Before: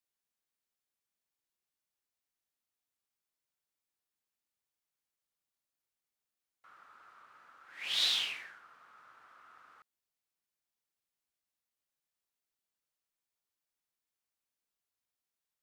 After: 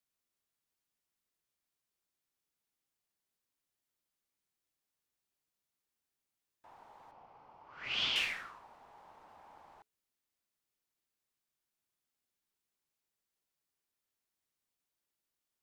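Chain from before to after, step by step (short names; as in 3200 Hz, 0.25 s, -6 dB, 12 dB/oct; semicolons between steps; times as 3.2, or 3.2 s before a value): 7.11–8.16 speaker cabinet 460–5200 Hz, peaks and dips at 580 Hz +5 dB, 2200 Hz -8 dB, 4200 Hz -9 dB; frequency shift -440 Hz; gain +1 dB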